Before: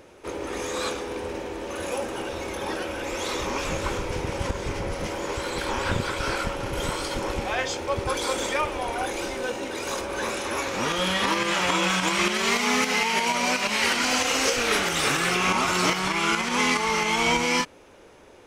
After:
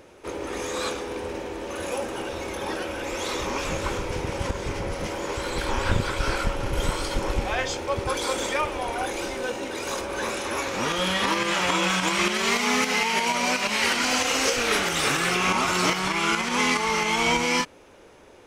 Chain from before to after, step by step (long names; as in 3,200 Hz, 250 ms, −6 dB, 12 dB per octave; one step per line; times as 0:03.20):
0:05.40–0:07.80: low-shelf EQ 66 Hz +11 dB